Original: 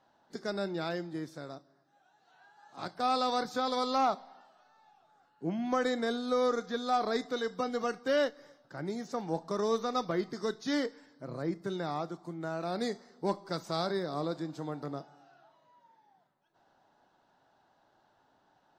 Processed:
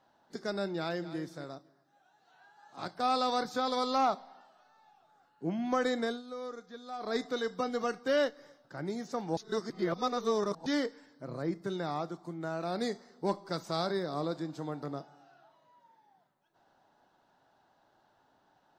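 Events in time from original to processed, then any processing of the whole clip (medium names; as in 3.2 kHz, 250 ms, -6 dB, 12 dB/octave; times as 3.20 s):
0.76–1.19 s: echo throw 250 ms, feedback 15%, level -13.5 dB
6.04–7.17 s: dip -12.5 dB, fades 0.19 s
9.37–10.66 s: reverse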